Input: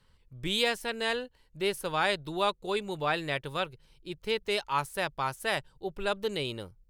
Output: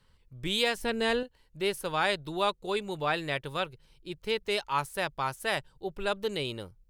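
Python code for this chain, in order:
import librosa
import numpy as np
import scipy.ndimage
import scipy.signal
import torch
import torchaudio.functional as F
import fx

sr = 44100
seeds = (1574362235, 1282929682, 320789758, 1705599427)

y = fx.low_shelf(x, sr, hz=380.0, db=11.0, at=(0.77, 1.23))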